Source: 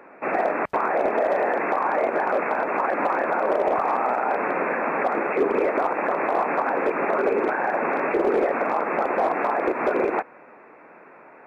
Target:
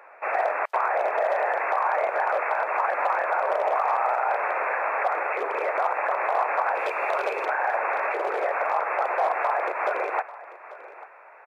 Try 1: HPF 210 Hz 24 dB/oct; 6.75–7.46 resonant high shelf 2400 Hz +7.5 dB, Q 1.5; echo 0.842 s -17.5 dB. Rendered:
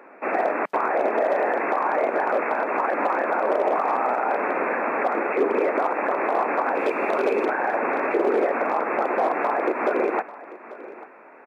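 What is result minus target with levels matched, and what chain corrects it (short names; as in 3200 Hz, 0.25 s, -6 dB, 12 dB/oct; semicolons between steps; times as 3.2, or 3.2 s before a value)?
250 Hz band +17.0 dB
HPF 580 Hz 24 dB/oct; 6.75–7.46 resonant high shelf 2400 Hz +7.5 dB, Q 1.5; echo 0.842 s -17.5 dB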